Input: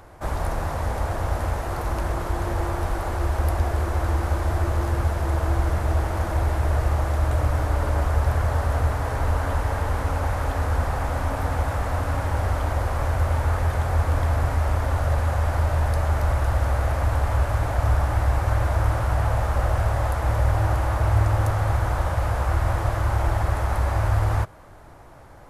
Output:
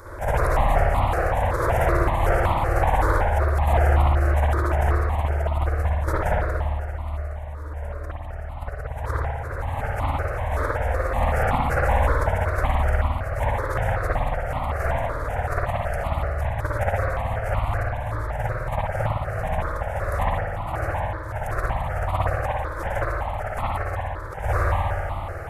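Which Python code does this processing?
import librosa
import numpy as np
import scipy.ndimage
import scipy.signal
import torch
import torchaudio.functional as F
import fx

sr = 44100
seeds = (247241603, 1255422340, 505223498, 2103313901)

y = fx.echo_feedback(x, sr, ms=188, feedback_pct=55, wet_db=-8)
y = fx.over_compress(y, sr, threshold_db=-27.0, ratio=-0.5)
y = fx.low_shelf(y, sr, hz=160.0, db=-3.0)
y = fx.rev_spring(y, sr, rt60_s=1.5, pass_ms=(55,), chirp_ms=20, drr_db=-8.0)
y = fx.phaser_held(y, sr, hz=5.3, low_hz=760.0, high_hz=1600.0)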